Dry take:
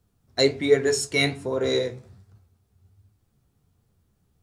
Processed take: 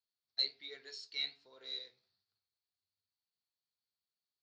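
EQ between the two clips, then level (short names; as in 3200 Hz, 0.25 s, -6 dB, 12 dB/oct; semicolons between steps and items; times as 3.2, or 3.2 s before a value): band-pass 4400 Hz, Q 8.3; air absorption 190 m; +3.0 dB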